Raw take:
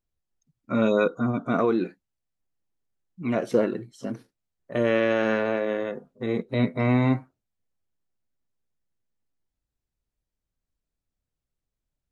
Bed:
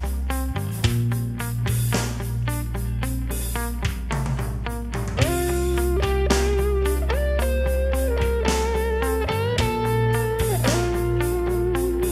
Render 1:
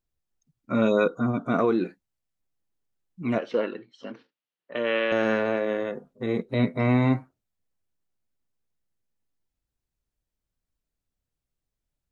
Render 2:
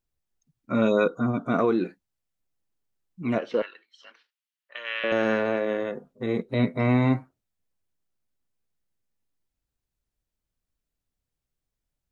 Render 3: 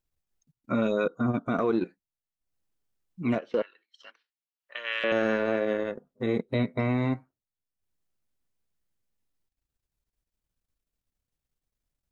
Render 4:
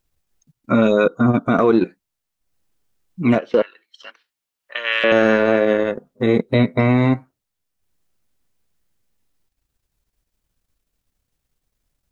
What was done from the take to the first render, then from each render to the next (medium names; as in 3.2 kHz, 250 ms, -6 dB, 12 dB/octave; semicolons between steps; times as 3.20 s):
3.38–5.12 s: cabinet simulation 350–4400 Hz, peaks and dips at 370 Hz -5 dB, 680 Hz -6 dB, 2.9 kHz +6 dB
3.62–5.04 s: high-pass 1.5 kHz
transient shaper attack +1 dB, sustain -11 dB; peak limiter -16.5 dBFS, peak gain reduction 6.5 dB
trim +11 dB